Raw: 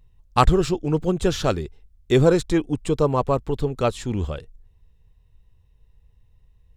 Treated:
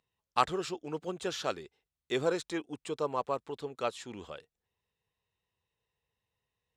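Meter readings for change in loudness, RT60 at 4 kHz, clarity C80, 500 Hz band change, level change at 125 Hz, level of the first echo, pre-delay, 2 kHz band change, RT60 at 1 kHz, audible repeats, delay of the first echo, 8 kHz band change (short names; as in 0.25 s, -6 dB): -13.0 dB, none, none, -13.0 dB, -23.5 dB, none, none, -8.0 dB, none, none, none, -9.5 dB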